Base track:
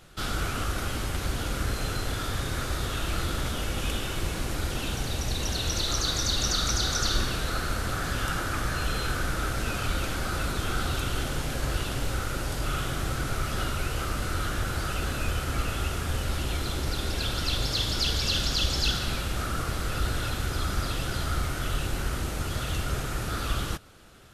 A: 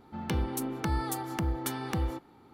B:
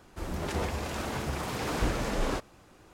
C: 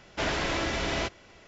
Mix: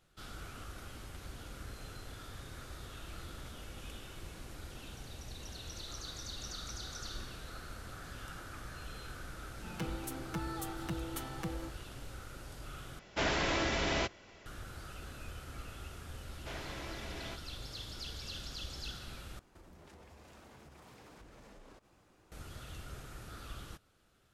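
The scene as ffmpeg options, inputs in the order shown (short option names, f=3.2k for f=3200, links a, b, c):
-filter_complex "[3:a]asplit=2[a][b];[0:a]volume=-17.5dB[c];[1:a]aecho=1:1:6.1:0.96[d];[2:a]acompressor=threshold=-44dB:ratio=6:attack=3.2:release=140:knee=1:detection=peak[e];[c]asplit=3[f][g][h];[f]atrim=end=12.994[i];[a]atrim=end=1.47,asetpts=PTS-STARTPTS,volume=-3dB[j];[g]atrim=start=14.456:end=19.394[k];[e]atrim=end=2.93,asetpts=PTS-STARTPTS,volume=-10dB[l];[h]atrim=start=22.316[m];[d]atrim=end=2.53,asetpts=PTS-STARTPTS,volume=-11dB,afade=t=in:d=0.004:c=hsin,afade=t=out:st=2.526:d=0.004:c=hsin,adelay=9500[n];[b]atrim=end=1.47,asetpts=PTS-STARTPTS,volume=-16dB,afade=t=in:d=0.004:c=hsin,afade=t=out:st=1.466:d=0.004:c=hsin,adelay=16280[o];[i][j]acrossfade=d=0.004:c1=hsin:c2=hsin[p];[p][k]acrossfade=d=0.004:c1=hsin:c2=hsin[q];[q][l]acrossfade=d=0.004:c1=hsin:c2=hsin[r];[r][m]acrossfade=d=0.004:c1=hsin:c2=hsin[s];[s][n][o]amix=inputs=3:normalize=0"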